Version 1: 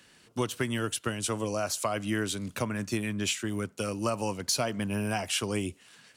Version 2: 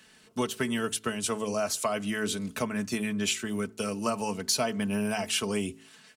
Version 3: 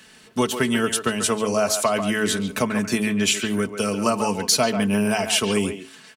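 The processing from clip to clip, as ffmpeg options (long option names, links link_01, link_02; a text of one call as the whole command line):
ffmpeg -i in.wav -af "aecho=1:1:4.6:0.55,bandreject=frequency=54.47:width_type=h:width=4,bandreject=frequency=108.94:width_type=h:width=4,bandreject=frequency=163.41:width_type=h:width=4,bandreject=frequency=217.88:width_type=h:width=4,bandreject=frequency=272.35:width_type=h:width=4,bandreject=frequency=326.82:width_type=h:width=4,bandreject=frequency=381.29:width_type=h:width=4,bandreject=frequency=435.76:width_type=h:width=4" out.wav
ffmpeg -i in.wav -filter_complex "[0:a]asplit=2[link_01][link_02];[link_02]adelay=140,highpass=300,lowpass=3400,asoftclip=type=hard:threshold=-20.5dB,volume=-8dB[link_03];[link_01][link_03]amix=inputs=2:normalize=0,volume=8dB" out.wav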